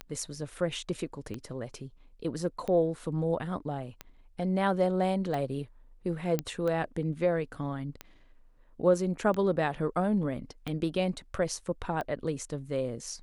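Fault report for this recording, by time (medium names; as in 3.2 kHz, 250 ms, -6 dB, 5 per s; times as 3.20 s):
tick 45 rpm -22 dBFS
6.39 s: pop -15 dBFS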